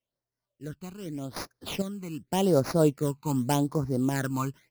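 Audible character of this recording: random-step tremolo 2.2 Hz, depth 70%; aliases and images of a low sample rate 8.2 kHz, jitter 20%; phasing stages 12, 0.85 Hz, lowest notch 570–3100 Hz

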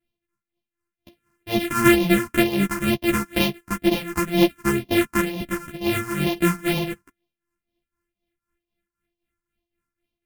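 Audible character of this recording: a buzz of ramps at a fixed pitch in blocks of 128 samples; phasing stages 4, 2.1 Hz, lowest notch 590–1400 Hz; tremolo triangle 3.9 Hz, depth 80%; a shimmering, thickened sound

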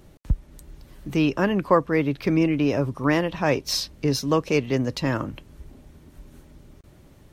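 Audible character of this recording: noise floor -52 dBFS; spectral tilt -5.0 dB/octave

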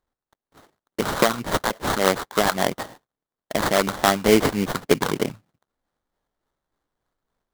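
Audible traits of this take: phasing stages 2, 3.5 Hz, lowest notch 350–3600 Hz; aliases and images of a low sample rate 2.6 kHz, jitter 20%

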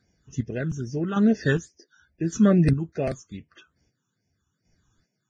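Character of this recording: chopped level 0.86 Hz, depth 60%, duty 35%; phasing stages 8, 2.4 Hz, lowest notch 600–1200 Hz; Vorbis

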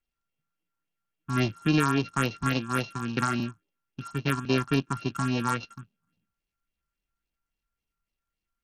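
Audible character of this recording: a buzz of ramps at a fixed pitch in blocks of 32 samples; phasing stages 4, 3.6 Hz, lowest notch 480–1400 Hz; SBC

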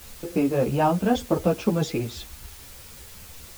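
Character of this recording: tremolo triangle 3.8 Hz, depth 30%; a quantiser's noise floor 8-bit, dither triangular; a shimmering, thickened sound

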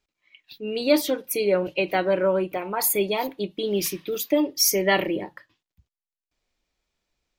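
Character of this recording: noise floor -92 dBFS; spectral tilt -3.0 dB/octave

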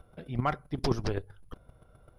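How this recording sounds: chopped level 7.7 Hz, depth 65%, duty 10%

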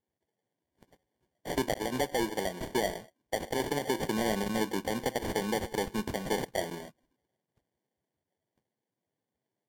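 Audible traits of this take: aliases and images of a low sample rate 1.3 kHz, jitter 0%; Vorbis

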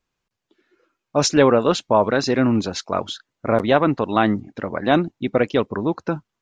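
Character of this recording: noise floor -82 dBFS; spectral tilt -5.0 dB/octave

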